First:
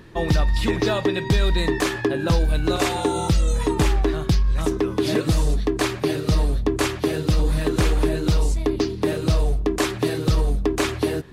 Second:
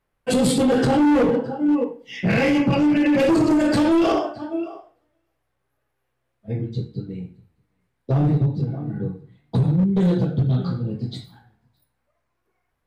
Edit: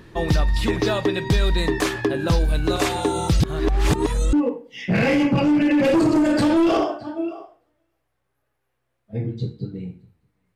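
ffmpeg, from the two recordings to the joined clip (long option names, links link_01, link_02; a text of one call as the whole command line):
ffmpeg -i cue0.wav -i cue1.wav -filter_complex "[0:a]apad=whole_dur=10.55,atrim=end=10.55,asplit=2[link_01][link_02];[link_01]atrim=end=3.402[link_03];[link_02]atrim=start=3.398:end=4.332,asetpts=PTS-STARTPTS,areverse[link_04];[1:a]atrim=start=1.678:end=7.9[link_05];[link_03][link_04]acrossfade=duration=0.004:curve1=hsin:curve2=hsin[link_06];[link_06][link_05]acrossfade=duration=0.004:curve1=hsin:curve2=hsin" out.wav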